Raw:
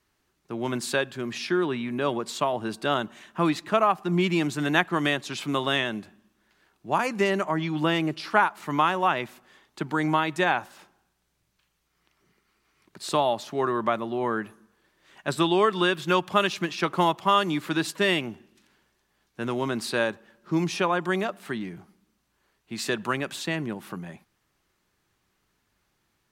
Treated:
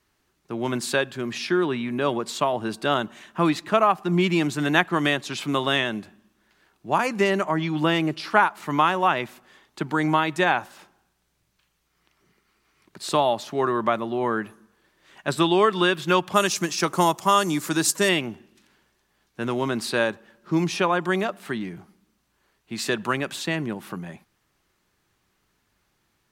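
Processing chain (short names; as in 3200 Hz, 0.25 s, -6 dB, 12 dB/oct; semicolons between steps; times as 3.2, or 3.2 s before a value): 16.34–18.09 resonant high shelf 4700 Hz +10.5 dB, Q 1.5; gain +2.5 dB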